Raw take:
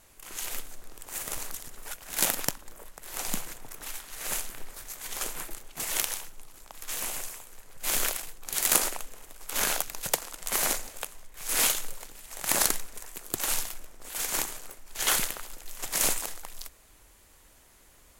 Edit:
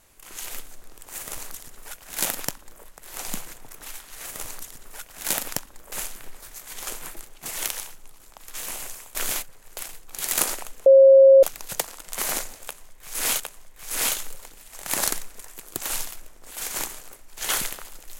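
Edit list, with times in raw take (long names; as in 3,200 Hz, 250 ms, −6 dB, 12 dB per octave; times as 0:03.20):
0:01.18–0:02.84: duplicate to 0:04.26
0:07.49–0:08.11: reverse
0:09.20–0:09.77: beep over 540 Hz −8 dBFS
0:10.98–0:11.74: repeat, 2 plays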